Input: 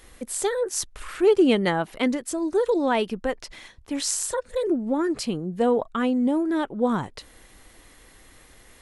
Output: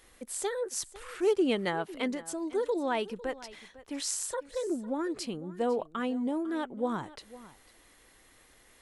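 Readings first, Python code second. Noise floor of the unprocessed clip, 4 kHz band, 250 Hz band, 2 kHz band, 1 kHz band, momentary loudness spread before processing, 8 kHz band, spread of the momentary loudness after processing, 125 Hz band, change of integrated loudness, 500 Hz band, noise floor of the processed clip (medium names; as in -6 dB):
-53 dBFS, -7.0 dB, -9.0 dB, -7.0 dB, -7.5 dB, 10 LU, -7.0 dB, 13 LU, -10.5 dB, -8.5 dB, -8.0 dB, -61 dBFS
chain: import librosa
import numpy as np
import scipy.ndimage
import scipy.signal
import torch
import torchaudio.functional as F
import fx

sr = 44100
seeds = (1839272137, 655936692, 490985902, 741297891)

y = fx.low_shelf(x, sr, hz=190.0, db=-7.0)
y = y + 10.0 ** (-18.0 / 20.0) * np.pad(y, (int(502 * sr / 1000.0), 0))[:len(y)]
y = F.gain(torch.from_numpy(y), -7.0).numpy()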